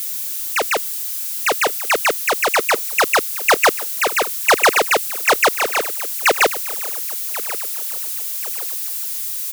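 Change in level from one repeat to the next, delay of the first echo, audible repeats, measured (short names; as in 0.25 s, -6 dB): -8.0 dB, 1.085 s, 3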